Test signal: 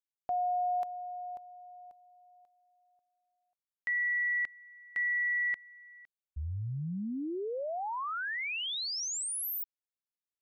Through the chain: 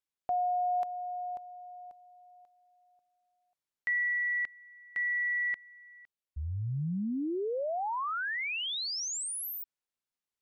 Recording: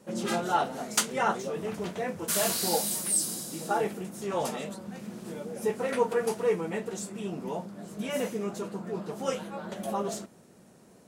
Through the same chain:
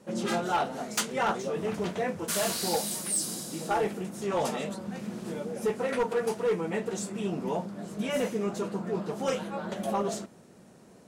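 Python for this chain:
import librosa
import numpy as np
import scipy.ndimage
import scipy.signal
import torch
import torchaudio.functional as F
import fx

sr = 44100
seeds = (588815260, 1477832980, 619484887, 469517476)

p1 = fx.high_shelf(x, sr, hz=11000.0, db=-9.0)
p2 = fx.rider(p1, sr, range_db=4, speed_s=0.5)
p3 = p1 + (p2 * 10.0 ** (-1.0 / 20.0))
p4 = np.clip(p3, -10.0 ** (-17.5 / 20.0), 10.0 ** (-17.5 / 20.0))
y = p4 * 10.0 ** (-4.0 / 20.0)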